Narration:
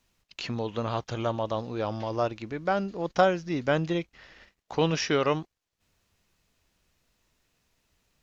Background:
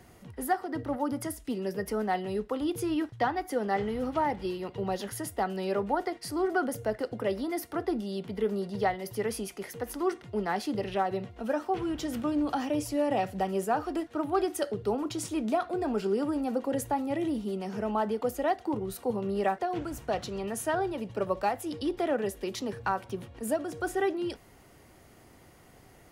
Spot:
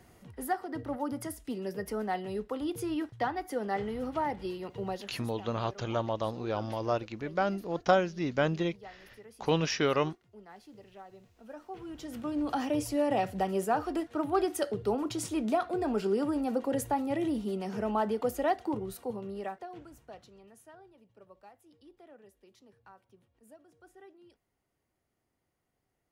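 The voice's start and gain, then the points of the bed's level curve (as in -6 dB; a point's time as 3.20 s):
4.70 s, -2.5 dB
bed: 4.89 s -3.5 dB
5.46 s -21 dB
11.21 s -21 dB
12.60 s -0.5 dB
18.61 s -0.5 dB
20.84 s -26 dB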